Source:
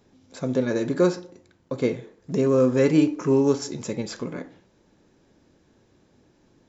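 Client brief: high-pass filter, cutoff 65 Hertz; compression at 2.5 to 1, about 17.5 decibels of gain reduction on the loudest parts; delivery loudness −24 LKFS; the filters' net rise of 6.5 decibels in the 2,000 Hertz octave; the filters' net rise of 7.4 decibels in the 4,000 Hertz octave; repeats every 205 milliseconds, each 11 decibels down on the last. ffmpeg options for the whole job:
ffmpeg -i in.wav -af "highpass=65,equalizer=frequency=2000:width_type=o:gain=6,equalizer=frequency=4000:width_type=o:gain=8,acompressor=threshold=-42dB:ratio=2.5,aecho=1:1:205|410|615:0.282|0.0789|0.0221,volume=15dB" out.wav

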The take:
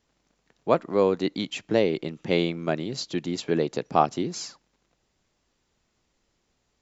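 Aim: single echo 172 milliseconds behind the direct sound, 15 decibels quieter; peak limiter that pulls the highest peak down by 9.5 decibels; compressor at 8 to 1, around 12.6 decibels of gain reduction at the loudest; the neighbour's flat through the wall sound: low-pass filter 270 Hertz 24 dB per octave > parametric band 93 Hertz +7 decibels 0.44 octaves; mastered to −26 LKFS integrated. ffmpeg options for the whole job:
ffmpeg -i in.wav -af "acompressor=threshold=-27dB:ratio=8,alimiter=limit=-23.5dB:level=0:latency=1,lowpass=frequency=270:width=0.5412,lowpass=frequency=270:width=1.3066,equalizer=frequency=93:width_type=o:width=0.44:gain=7,aecho=1:1:172:0.178,volume=15.5dB" out.wav

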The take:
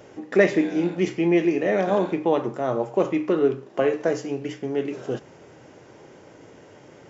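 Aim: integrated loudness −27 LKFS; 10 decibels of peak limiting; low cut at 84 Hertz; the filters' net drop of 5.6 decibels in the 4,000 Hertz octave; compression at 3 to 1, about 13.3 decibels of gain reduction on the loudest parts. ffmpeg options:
ffmpeg -i in.wav -af "highpass=84,equalizer=frequency=4000:width_type=o:gain=-8.5,acompressor=threshold=-30dB:ratio=3,volume=9.5dB,alimiter=limit=-17.5dB:level=0:latency=1" out.wav

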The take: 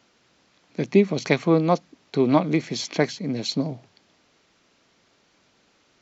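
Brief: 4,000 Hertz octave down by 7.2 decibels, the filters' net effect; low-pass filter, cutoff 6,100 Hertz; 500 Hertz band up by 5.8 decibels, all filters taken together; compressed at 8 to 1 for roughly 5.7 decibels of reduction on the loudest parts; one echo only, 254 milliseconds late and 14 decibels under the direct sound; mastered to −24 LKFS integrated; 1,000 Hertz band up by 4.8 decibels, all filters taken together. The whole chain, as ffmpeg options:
ffmpeg -i in.wav -af "lowpass=6100,equalizer=frequency=500:width_type=o:gain=6.5,equalizer=frequency=1000:width_type=o:gain=4,equalizer=frequency=4000:width_type=o:gain=-7.5,acompressor=threshold=-14dB:ratio=8,aecho=1:1:254:0.2,volume=-0.5dB" out.wav

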